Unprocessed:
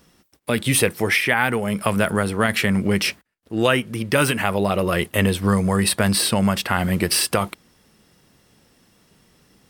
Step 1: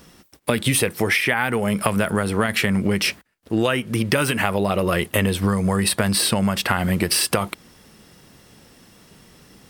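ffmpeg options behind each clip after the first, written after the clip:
ffmpeg -i in.wav -af "acompressor=threshold=-24dB:ratio=6,volume=7.5dB" out.wav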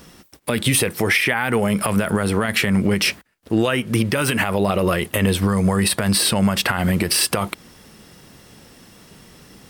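ffmpeg -i in.wav -af "alimiter=level_in=10dB:limit=-1dB:release=50:level=0:latency=1,volume=-6.5dB" out.wav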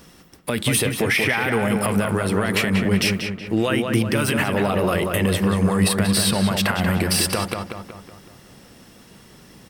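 ffmpeg -i in.wav -filter_complex "[0:a]asplit=2[link_01][link_02];[link_02]adelay=186,lowpass=frequency=2700:poles=1,volume=-4dB,asplit=2[link_03][link_04];[link_04]adelay=186,lowpass=frequency=2700:poles=1,volume=0.52,asplit=2[link_05][link_06];[link_06]adelay=186,lowpass=frequency=2700:poles=1,volume=0.52,asplit=2[link_07][link_08];[link_08]adelay=186,lowpass=frequency=2700:poles=1,volume=0.52,asplit=2[link_09][link_10];[link_10]adelay=186,lowpass=frequency=2700:poles=1,volume=0.52,asplit=2[link_11][link_12];[link_12]adelay=186,lowpass=frequency=2700:poles=1,volume=0.52,asplit=2[link_13][link_14];[link_14]adelay=186,lowpass=frequency=2700:poles=1,volume=0.52[link_15];[link_01][link_03][link_05][link_07][link_09][link_11][link_13][link_15]amix=inputs=8:normalize=0,volume=-2.5dB" out.wav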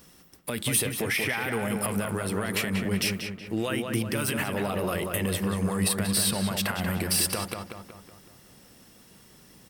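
ffmpeg -i in.wav -af "crystalizer=i=1:c=0,volume=-8.5dB" out.wav

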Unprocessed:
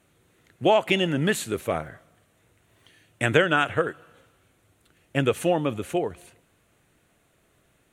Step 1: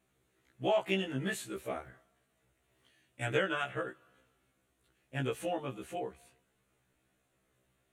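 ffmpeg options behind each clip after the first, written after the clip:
ffmpeg -i in.wav -af "afftfilt=real='re*1.73*eq(mod(b,3),0)':imag='im*1.73*eq(mod(b,3),0)':win_size=2048:overlap=0.75,volume=-9dB" out.wav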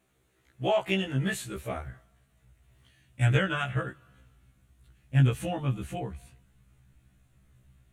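ffmpeg -i in.wav -af "asubboost=boost=11:cutoff=130,volume=4.5dB" out.wav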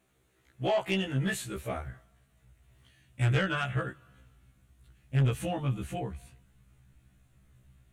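ffmpeg -i in.wav -af "asoftclip=type=tanh:threshold=-20dB" out.wav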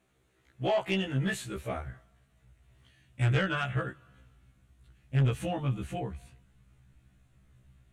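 ffmpeg -i in.wav -af "highshelf=frequency=11000:gain=-10.5" out.wav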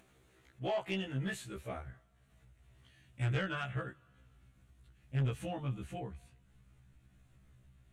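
ffmpeg -i in.wav -af "acompressor=mode=upward:threshold=-48dB:ratio=2.5,volume=-7dB" out.wav

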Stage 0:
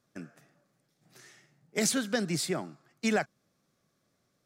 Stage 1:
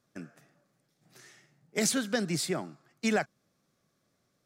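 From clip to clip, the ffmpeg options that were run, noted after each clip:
ffmpeg -i in.wav -af anull out.wav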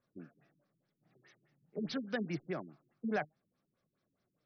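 ffmpeg -i in.wav -af "flanger=delay=1.8:depth=4.9:regen=78:speed=0.78:shape=sinusoidal,afftfilt=real='re*lt(b*sr/1024,370*pow(6300/370,0.5+0.5*sin(2*PI*4.8*pts/sr)))':imag='im*lt(b*sr/1024,370*pow(6300/370,0.5+0.5*sin(2*PI*4.8*pts/sr)))':win_size=1024:overlap=0.75,volume=-2dB" out.wav

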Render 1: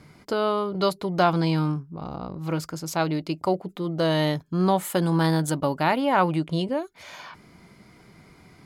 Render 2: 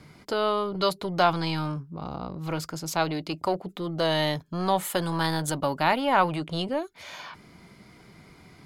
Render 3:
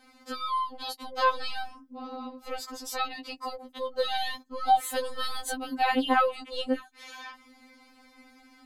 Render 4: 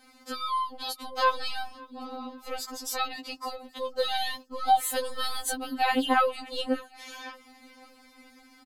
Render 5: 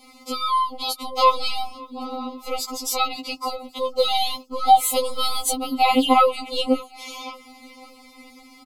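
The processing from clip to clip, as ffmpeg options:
ffmpeg -i in.wav -filter_complex "[0:a]equalizer=frequency=3500:width=1.5:gain=2.5,acrossover=split=500|2600[link_01][link_02][link_03];[link_01]asoftclip=type=tanh:threshold=-28.5dB[link_04];[link_04][link_02][link_03]amix=inputs=3:normalize=0" out.wav
ffmpeg -i in.wav -af "afftfilt=real='re*3.46*eq(mod(b,12),0)':imag='im*3.46*eq(mod(b,12),0)':win_size=2048:overlap=0.75" out.wav
ffmpeg -i in.wav -af "highshelf=frequency=5700:gain=6.5,aecho=1:1:554|1108|1662:0.0668|0.0314|0.0148" out.wav
ffmpeg -i in.wav -af "asuperstop=centerf=1600:order=20:qfactor=2.6,volume=8dB" out.wav

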